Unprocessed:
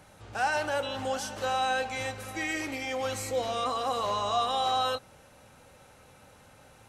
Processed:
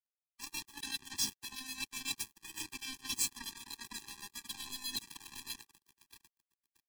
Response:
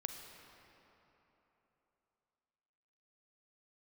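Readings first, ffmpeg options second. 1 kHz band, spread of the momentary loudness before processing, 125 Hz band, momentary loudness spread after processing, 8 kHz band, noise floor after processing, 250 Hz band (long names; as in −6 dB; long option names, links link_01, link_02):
−26.0 dB, 6 LU, −17.0 dB, 12 LU, +2.5 dB, below −85 dBFS, −13.0 dB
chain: -filter_complex "[0:a]highpass=130,equalizer=frequency=3500:width_type=o:width=2.3:gain=11,aecho=1:1:659|1318|1977:0.0891|0.041|0.0189,acrossover=split=2000[link_01][link_02];[link_01]aeval=exprs='val(0)*(1-0.7/2+0.7/2*cos(2*PI*7.9*n/s))':channel_layout=same[link_03];[link_02]aeval=exprs='val(0)*(1-0.7/2-0.7/2*cos(2*PI*7.9*n/s))':channel_layout=same[link_04];[link_03][link_04]amix=inputs=2:normalize=0,aecho=1:1:4.2:0.46,areverse,acompressor=threshold=-41dB:ratio=20,areverse,asuperstop=centerf=1400:order=8:qfactor=1.1,highshelf=frequency=6100:gain=11.5,acrusher=bits=5:mix=0:aa=0.5,acrossover=split=420|3000[link_05][link_06][link_07];[link_06]acompressor=threshold=-52dB:ratio=6[link_08];[link_05][link_08][link_07]amix=inputs=3:normalize=0,afftfilt=real='re*eq(mod(floor(b*sr/1024/390),2),0)':imag='im*eq(mod(floor(b*sr/1024/390),2),0)':win_size=1024:overlap=0.75,volume=10dB"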